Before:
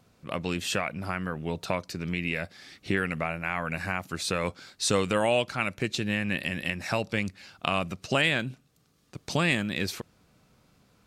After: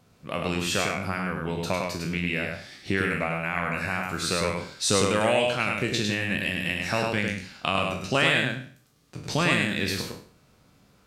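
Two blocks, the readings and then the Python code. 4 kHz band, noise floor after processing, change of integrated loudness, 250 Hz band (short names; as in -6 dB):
+4.0 dB, -61 dBFS, +3.0 dB, +2.0 dB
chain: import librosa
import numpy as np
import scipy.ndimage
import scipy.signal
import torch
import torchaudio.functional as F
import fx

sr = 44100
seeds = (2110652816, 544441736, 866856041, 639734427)

p1 = fx.spec_trails(x, sr, decay_s=0.48)
y = p1 + fx.echo_single(p1, sr, ms=103, db=-3.5, dry=0)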